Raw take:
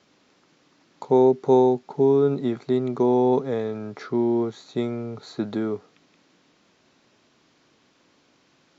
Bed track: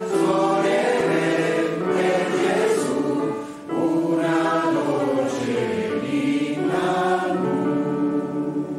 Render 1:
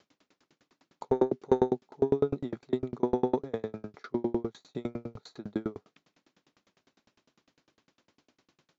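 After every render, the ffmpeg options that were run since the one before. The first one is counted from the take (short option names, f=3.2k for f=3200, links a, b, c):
-af "asoftclip=type=tanh:threshold=-6.5dB,aeval=exprs='val(0)*pow(10,-34*if(lt(mod(9.9*n/s,1),2*abs(9.9)/1000),1-mod(9.9*n/s,1)/(2*abs(9.9)/1000),(mod(9.9*n/s,1)-2*abs(9.9)/1000)/(1-2*abs(9.9)/1000))/20)':c=same"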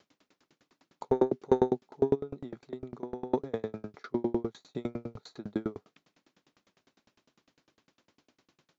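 -filter_complex "[0:a]asplit=3[a][b][c];[a]afade=t=out:st=2.14:d=0.02[d];[b]acompressor=threshold=-38dB:ratio=2.5:attack=3.2:release=140:knee=1:detection=peak,afade=t=in:st=2.14:d=0.02,afade=t=out:st=3.3:d=0.02[e];[c]afade=t=in:st=3.3:d=0.02[f];[d][e][f]amix=inputs=3:normalize=0"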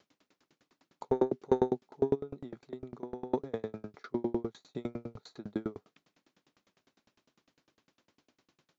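-af "volume=-2.5dB"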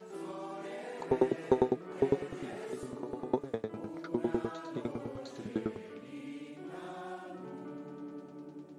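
-filter_complex "[1:a]volume=-23dB[a];[0:a][a]amix=inputs=2:normalize=0"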